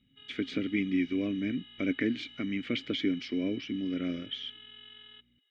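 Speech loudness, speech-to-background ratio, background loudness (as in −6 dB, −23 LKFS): −33.0 LKFS, 17.0 dB, −50.0 LKFS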